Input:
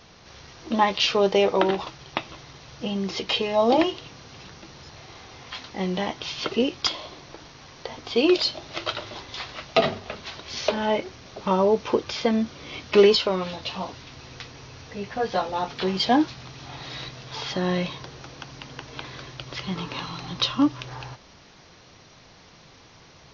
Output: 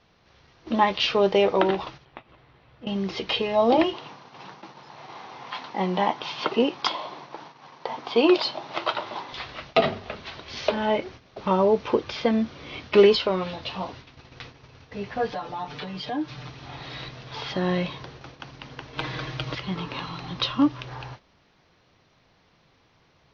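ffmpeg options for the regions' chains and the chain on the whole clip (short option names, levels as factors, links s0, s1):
-filter_complex "[0:a]asettb=1/sr,asplit=3[s0][s1][s2];[s0]atrim=end=2.054[s3];[s1]atrim=start=2.05:end=2.87,asetpts=PTS-STARTPTS,afade=t=in:d=0.004:c=qsin,afade=t=out:st=0.816:d=0.004:c=qsin,lowpass=2800,acompressor=threshold=0.01:ratio=3:attack=3.2:release=140:knee=1:detection=peak,asplit=2[s4][s5];[s5]adelay=17,volume=0.335[s6];[s4][s6]amix=inputs=2:normalize=0,atrim=end_sample=36162[s7];[s2]atrim=start=2.866[s8];[s3][s7]acrossfade=d=0.004:c1=hsin:c2=qsin[s9];[s9][s8]acrossfade=d=0.004:c1=qsin:c2=hsin,asettb=1/sr,asplit=3[s10][s11][s12];[s10]atrim=end=3.934[s13];[s11]atrim=start=3.93:end=9.33,asetpts=PTS-STARTPTS,afade=t=in:d=0.004:c=qsin,afade=t=out:st=5.396:d=0.004:c=qsin,highpass=f=140:w=0.5412,highpass=f=140:w=1.3066,equalizer=f=920:w=1.8:g=10.5[s14];[s12]atrim=start=9.326[s15];[s13][s14]acrossfade=d=0.004:c1=hsin:c2=qsin[s16];[s16][s15]acrossfade=d=0.004:c1=qsin:c2=hsin,asettb=1/sr,asplit=3[s17][s18][s19];[s17]atrim=end=15.324[s20];[s18]atrim=start=15.32:end=16.5,asetpts=PTS-STARTPTS,afade=t=in:d=0.004:c=qsin,afade=t=out:st=1.176:d=0.004:c=qsin,acompressor=threshold=0.0178:ratio=2.5:attack=3.2:release=140:knee=1:detection=peak,aecho=1:1:6.7:0.86,atrim=end_sample=52038[s21];[s19]atrim=start=16.496[s22];[s20][s21]acrossfade=d=0.004:c1=hsin:c2=qsin[s23];[s23][s22]acrossfade=d=0.004:c1=qsin:c2=hsin,asettb=1/sr,asplit=3[s24][s25][s26];[s24]atrim=end=18.984[s27];[s25]atrim=start=18.98:end=19.55,asetpts=PTS-STARTPTS,afade=t=in:d=0.004:c=qsin,afade=t=out:st=0.566:d=0.004:c=qsin,asoftclip=type=hard:threshold=0.0891,aecho=1:1:6.4:0.58,atrim=end_sample=25137,acontrast=49[s28];[s26]atrim=start=19.546[s29];[s27][s28]acrossfade=d=0.004:c1=hsin:c2=qsin[s30];[s30][s29]acrossfade=d=0.004:c1=qsin:c2=hsin,agate=range=0.316:threshold=0.00794:ratio=16:detection=peak,lowpass=3900"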